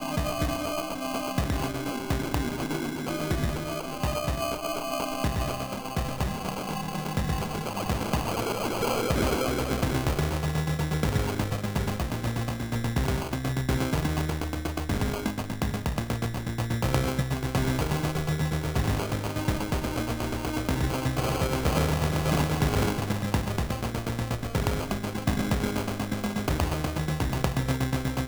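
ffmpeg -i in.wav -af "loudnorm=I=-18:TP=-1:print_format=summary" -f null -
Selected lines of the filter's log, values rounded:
Input Integrated:    -28.8 LUFS
Input True Peak:      -6.5 dBTP
Input LRA:             3.2 LU
Input Threshold:     -38.8 LUFS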